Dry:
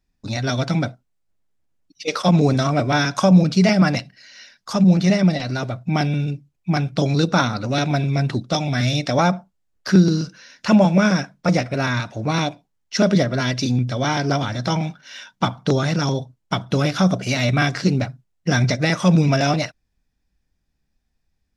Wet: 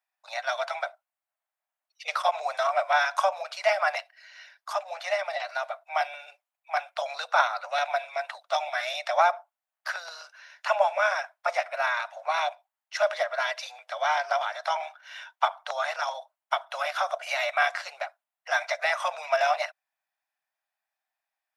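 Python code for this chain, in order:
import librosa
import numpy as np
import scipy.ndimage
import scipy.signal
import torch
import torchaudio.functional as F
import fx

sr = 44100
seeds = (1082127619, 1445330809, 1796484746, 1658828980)

y = scipy.signal.sosfilt(scipy.signal.butter(12, 620.0, 'highpass', fs=sr, output='sos'), x)
y = fx.peak_eq(y, sr, hz=5500.0, db=-12.5, octaves=1.5)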